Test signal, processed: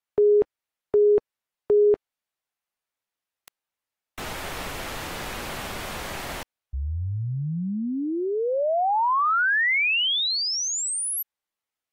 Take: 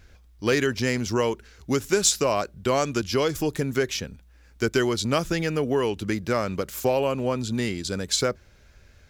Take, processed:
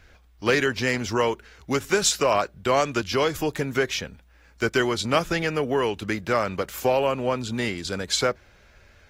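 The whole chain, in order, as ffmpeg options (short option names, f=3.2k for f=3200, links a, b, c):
-filter_complex "[0:a]acrossover=split=540|3500[a][b][c];[b]acontrast=71[d];[a][d][c]amix=inputs=3:normalize=0,volume=-2.5dB" -ar 48000 -c:a aac -b:a 48k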